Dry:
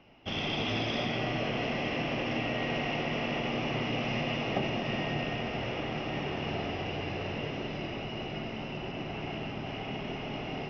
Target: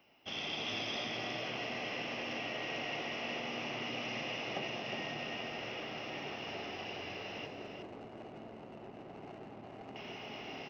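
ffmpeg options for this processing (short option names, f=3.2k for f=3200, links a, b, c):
-filter_complex "[0:a]aemphasis=mode=production:type=bsi,asettb=1/sr,asplit=3[a][b][c];[a]atrim=end=7.464[d];[b]atrim=start=7.46:end=9.96,asetpts=PTS-STARTPTS,afade=t=in:d=0.004:c=qsin,afade=t=out:st=2.496:d=0.004:c=qsin,adynamicsmooth=sensitivity=3:basefreq=540[e];[c]atrim=start=9.956[f];[d][e]acrossfade=d=0.004:c1=hsin:c2=qsin[g];[g][f]acrossfade=d=0.004:c1=qsin:c2=hsin,aecho=1:1:362:0.473,volume=-7.5dB"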